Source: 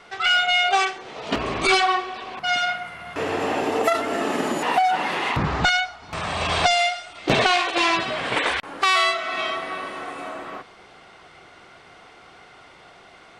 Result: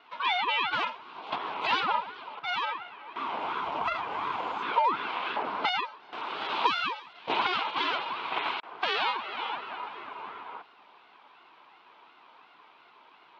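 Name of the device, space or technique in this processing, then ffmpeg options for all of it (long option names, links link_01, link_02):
voice changer toy: -filter_complex "[0:a]aeval=exprs='val(0)*sin(2*PI*430*n/s+430*0.7/2.8*sin(2*PI*2.8*n/s))':channel_layout=same,highpass=430,equalizer=frequency=550:width_type=q:width=4:gain=-9,equalizer=frequency=980:width_type=q:width=4:gain=7,equalizer=frequency=1800:width_type=q:width=4:gain=-10,lowpass=frequency=3700:width=0.5412,lowpass=frequency=3700:width=1.3066,asplit=3[link_01][link_02][link_03];[link_01]afade=type=out:start_time=3.59:duration=0.02[link_04];[link_02]asubboost=boost=5:cutoff=110,afade=type=in:start_time=3.59:duration=0.02,afade=type=out:start_time=4.36:duration=0.02[link_05];[link_03]afade=type=in:start_time=4.36:duration=0.02[link_06];[link_04][link_05][link_06]amix=inputs=3:normalize=0,volume=-4dB"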